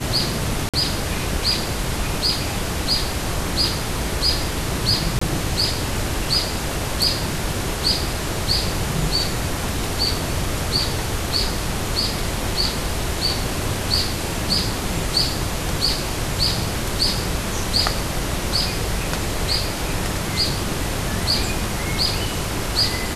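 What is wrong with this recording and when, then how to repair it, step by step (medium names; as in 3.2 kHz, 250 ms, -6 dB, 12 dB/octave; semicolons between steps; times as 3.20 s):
0.69–0.74 s: dropout 46 ms
5.19–5.21 s: dropout 24 ms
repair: interpolate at 0.69 s, 46 ms; interpolate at 5.19 s, 24 ms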